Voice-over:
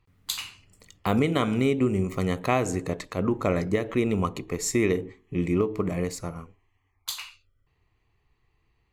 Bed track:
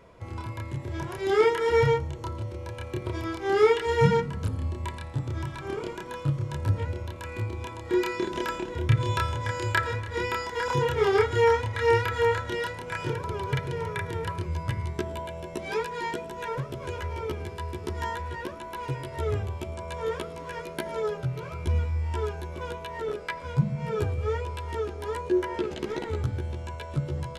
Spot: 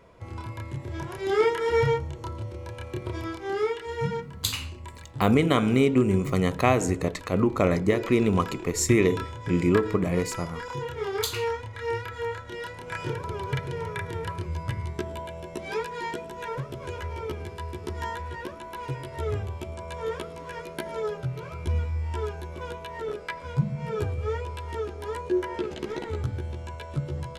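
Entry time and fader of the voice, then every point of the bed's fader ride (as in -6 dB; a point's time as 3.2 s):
4.15 s, +2.5 dB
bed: 3.26 s -1 dB
3.71 s -8 dB
12.45 s -8 dB
12.93 s -1 dB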